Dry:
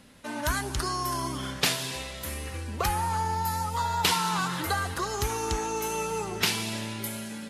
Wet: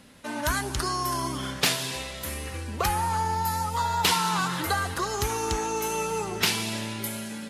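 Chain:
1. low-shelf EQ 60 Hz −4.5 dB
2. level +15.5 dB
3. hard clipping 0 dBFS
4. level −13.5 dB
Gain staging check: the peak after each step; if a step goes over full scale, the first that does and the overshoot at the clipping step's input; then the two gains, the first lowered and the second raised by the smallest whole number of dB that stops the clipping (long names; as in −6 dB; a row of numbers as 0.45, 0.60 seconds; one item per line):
−10.5, +5.0, 0.0, −13.5 dBFS
step 2, 5.0 dB
step 2 +10.5 dB, step 4 −8.5 dB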